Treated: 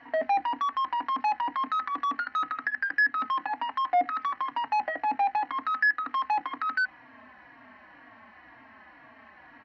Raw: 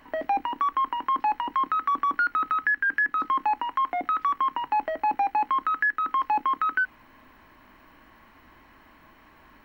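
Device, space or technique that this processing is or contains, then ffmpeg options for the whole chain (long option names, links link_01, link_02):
barber-pole flanger into a guitar amplifier: -filter_complex "[0:a]asplit=2[link_01][link_02];[link_02]adelay=3.7,afreqshift=-2[link_03];[link_01][link_03]amix=inputs=2:normalize=1,asoftclip=type=tanh:threshold=-28.5dB,highpass=110,equalizer=frequency=170:width_type=q:width=4:gain=-8,equalizer=frequency=250:width_type=q:width=4:gain=4,equalizer=frequency=370:width_type=q:width=4:gain=-9,equalizer=frequency=720:width_type=q:width=4:gain=8,equalizer=frequency=1800:width_type=q:width=4:gain=8,equalizer=frequency=3500:width_type=q:width=4:gain=-6,lowpass=frequency=4500:width=0.5412,lowpass=frequency=4500:width=1.3066,volume=3dB"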